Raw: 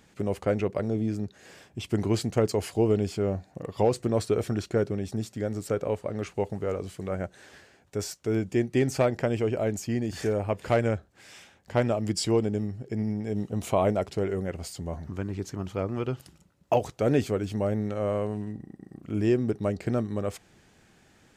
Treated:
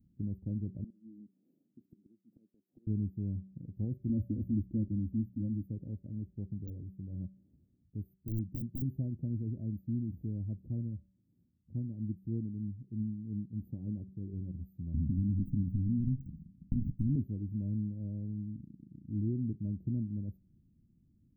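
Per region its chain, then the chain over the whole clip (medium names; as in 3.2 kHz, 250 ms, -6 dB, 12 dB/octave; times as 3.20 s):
0.84–2.87 s: high-pass 240 Hz 24 dB/octave + inverted gate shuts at -23 dBFS, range -25 dB + compression, threshold -39 dBFS
4.09–5.66 s: bass shelf 160 Hz +7 dB + hum notches 60/120/180 Hz + comb 3.6 ms, depth 81%
6.50–8.82 s: de-esser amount 30% + integer overflow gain 20 dB
10.67–14.33 s: comb of notches 650 Hz + tremolo triangle 3.1 Hz, depth 50%
14.94–17.16 s: comb filter that takes the minimum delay 0.69 ms + resonant low shelf 360 Hz +12 dB, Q 3 + compression, threshold -22 dBFS
whole clip: inverse Chebyshev band-stop 1.2–8.1 kHz, stop band 70 dB; peaking EQ 430 Hz -14 dB 0.77 oct; de-hum 190.6 Hz, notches 3; trim -3 dB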